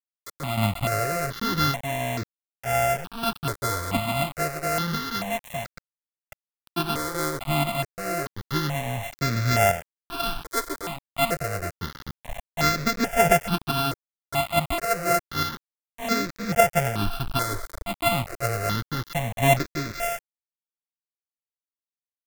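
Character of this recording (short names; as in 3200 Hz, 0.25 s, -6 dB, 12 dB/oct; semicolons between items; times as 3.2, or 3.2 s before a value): a buzz of ramps at a fixed pitch in blocks of 64 samples; random-step tremolo 3.5 Hz, depth 55%; a quantiser's noise floor 6-bit, dither none; notches that jump at a steady rate 2.3 Hz 740–3000 Hz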